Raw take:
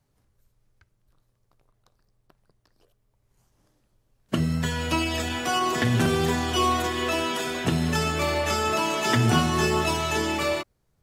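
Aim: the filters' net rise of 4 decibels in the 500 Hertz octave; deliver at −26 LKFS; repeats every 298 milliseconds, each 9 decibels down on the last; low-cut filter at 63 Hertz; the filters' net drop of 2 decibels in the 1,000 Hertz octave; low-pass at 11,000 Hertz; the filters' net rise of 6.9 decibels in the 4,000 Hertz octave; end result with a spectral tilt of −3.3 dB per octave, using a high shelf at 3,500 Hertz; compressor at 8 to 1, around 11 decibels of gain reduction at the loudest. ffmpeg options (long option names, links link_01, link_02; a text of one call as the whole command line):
ffmpeg -i in.wav -af "highpass=63,lowpass=11000,equalizer=frequency=500:width_type=o:gain=6.5,equalizer=frequency=1000:width_type=o:gain=-5.5,highshelf=frequency=3500:gain=8.5,equalizer=frequency=4000:width_type=o:gain=4,acompressor=threshold=-27dB:ratio=8,aecho=1:1:298|596|894|1192:0.355|0.124|0.0435|0.0152,volume=3dB" out.wav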